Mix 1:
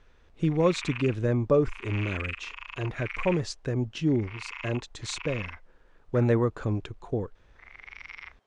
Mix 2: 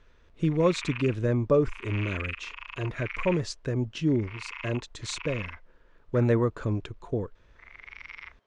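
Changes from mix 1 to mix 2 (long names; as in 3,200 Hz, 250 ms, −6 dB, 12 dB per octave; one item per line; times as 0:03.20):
background: add low-pass filter 5,400 Hz
master: add Butterworth band-reject 780 Hz, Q 7.5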